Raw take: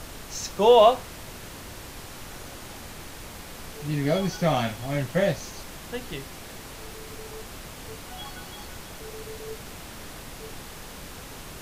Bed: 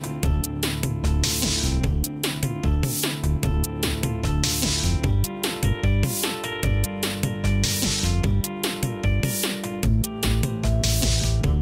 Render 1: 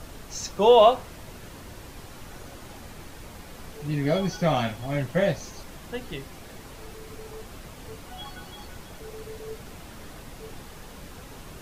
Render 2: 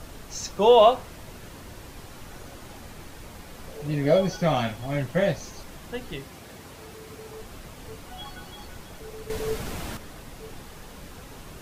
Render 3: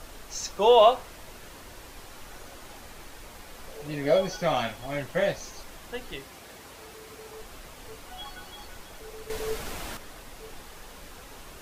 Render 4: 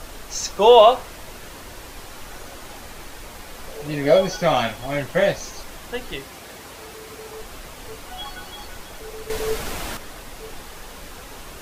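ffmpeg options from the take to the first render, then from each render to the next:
-af "afftdn=nr=6:nf=-42"
-filter_complex "[0:a]asettb=1/sr,asplit=3[s0][s1][s2];[s0]atrim=end=3.674[s3];[s1]atrim=start=3.67:end=4.36,asetpts=PTS-STARTPTS,afade=t=in:d=0.004:c=qsin,afade=t=out:st=0.686:d=0.004:c=qsin,equalizer=f=550:t=o:w=0.43:g=9.5[s4];[s2]atrim=start=4.356[s5];[s3][s4]acrossfade=d=0.004:c1=hsin:c2=qsin[s6];[s6][s5]acrossfade=d=0.004:c1=qsin:c2=hsin,asettb=1/sr,asplit=3[s7][s8][s9];[s7]atrim=end=6.204[s10];[s8]atrim=start=6.2:end=7.38,asetpts=PTS-STARTPTS,afade=t=in:d=0.004:c=qsin,afade=t=out:st=1.176:d=0.004:c=qsin,highpass=62[s11];[s9]atrim=start=7.376[s12];[s10][s11]acrossfade=d=0.004:c1=hsin:c2=qsin[s13];[s13][s12]acrossfade=d=0.004:c1=qsin:c2=hsin,asplit=3[s14][s15][s16];[s14]atrim=end=9.302[s17];[s15]atrim=start=9.298:end=9.972,asetpts=PTS-STARTPTS,volume=2.82[s18];[s16]atrim=start=9.968[s19];[s17][s18]acrossfade=d=0.004:c1=hsin:c2=hsin[s20];[s20][s19]acrossfade=d=0.004:c1=hsin:c2=hsin"
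-af "equalizer=f=130:t=o:w=2.4:g=-10"
-af "volume=2.24,alimiter=limit=0.794:level=0:latency=1"

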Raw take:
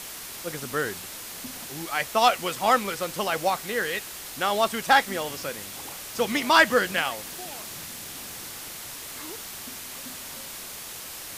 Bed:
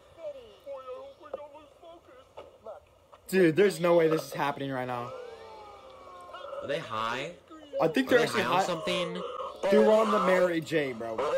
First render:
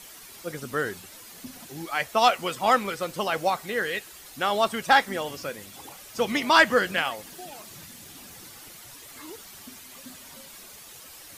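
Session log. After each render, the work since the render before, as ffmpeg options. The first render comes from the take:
-af "afftdn=nr=10:nf=-39"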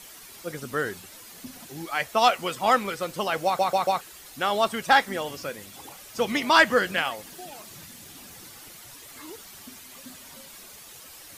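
-filter_complex "[0:a]asplit=5[s0][s1][s2][s3][s4];[s0]atrim=end=3.592[s5];[s1]atrim=start=3.448:end=3.592[s6];[s2]atrim=start=3.448:end=3.592[s7];[s3]atrim=start=3.448:end=3.592[s8];[s4]atrim=start=4.008[s9];[s5][s6]acrossfade=d=0.004:c1=hsin:c2=hsin[s10];[s10][s7]acrossfade=d=0.004:c1=hsin:c2=hsin[s11];[s11][s8]acrossfade=d=0.004:c1=hsin:c2=hsin[s12];[s12][s9]acrossfade=d=0.004:c1=hsin:c2=hsin"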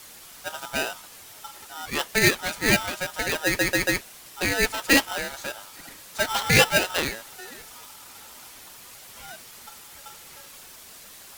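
-af "aeval=exprs='val(0)*sgn(sin(2*PI*1100*n/s))':c=same"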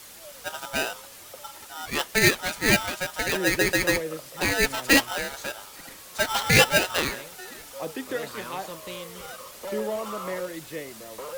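-filter_complex "[1:a]volume=0.398[s0];[0:a][s0]amix=inputs=2:normalize=0"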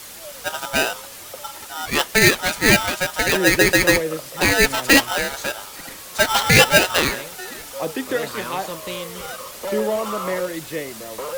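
-af "volume=2.37,alimiter=limit=0.708:level=0:latency=1"

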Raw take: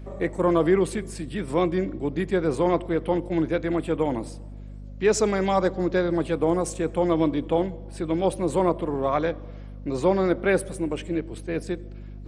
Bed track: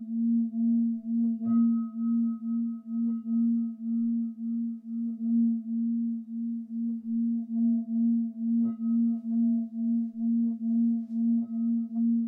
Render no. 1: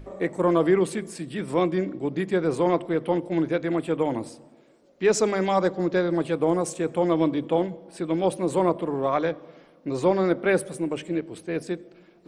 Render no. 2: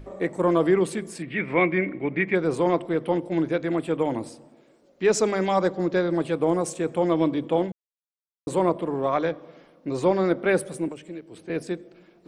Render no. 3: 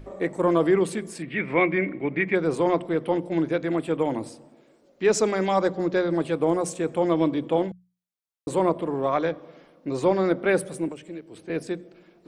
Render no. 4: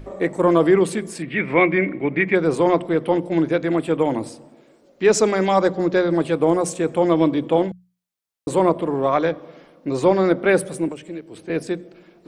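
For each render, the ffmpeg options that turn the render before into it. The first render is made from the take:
-af "bandreject=f=50:t=h:w=6,bandreject=f=100:t=h:w=6,bandreject=f=150:t=h:w=6,bandreject=f=200:t=h:w=6,bandreject=f=250:t=h:w=6"
-filter_complex "[0:a]asettb=1/sr,asplit=3[s0][s1][s2];[s0]atrim=end=1.224[s3];[s1]atrim=start=1.22:end=2.35,asetpts=PTS-STARTPTS,afade=t=in:d=0.004:c=qsin,afade=t=out:st=1.126:d=0.004:c=qsin,lowpass=f=2200:t=q:w=7.4[s4];[s2]atrim=start=2.346[s5];[s3][s4]acrossfade=d=0.004:c1=hsin:c2=qsin[s6];[s6][s5]acrossfade=d=0.004:c1=qsin:c2=hsin,asettb=1/sr,asplit=3[s7][s8][s9];[s7]atrim=end=10.884[s10];[s8]atrim=start=10.88:end=11.5,asetpts=PTS-STARTPTS,afade=t=in:d=0.004:c=qsin,afade=t=out:st=0.616:d=0.004:c=qsin,acrossover=split=340|4700[s11][s12][s13];[s11]acompressor=threshold=0.00794:ratio=4[s14];[s12]acompressor=threshold=0.00891:ratio=4[s15];[s13]acompressor=threshold=0.00141:ratio=4[s16];[s14][s15][s16]amix=inputs=3:normalize=0[s17];[s9]atrim=start=11.496[s18];[s10][s17]acrossfade=d=0.004:c1=hsin:c2=qsin[s19];[s19][s18]acrossfade=d=0.004:c1=qsin:c2=hsin,asplit=3[s20][s21][s22];[s20]atrim=end=7.72,asetpts=PTS-STARTPTS,afade=t=out:st=7.716:d=0.004:c=hsin[s23];[s21]atrim=start=7.72:end=8.47,asetpts=PTS-STARTPTS,volume=0[s24];[s22]atrim=start=8.47,asetpts=PTS-STARTPTS,afade=t=in:d=0.004:c=hsin[s25];[s23][s24][s25]concat=n=3:v=0:a=1"
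-af "bandreject=f=60:t=h:w=6,bandreject=f=120:t=h:w=6,bandreject=f=180:t=h:w=6"
-af "volume=1.78"

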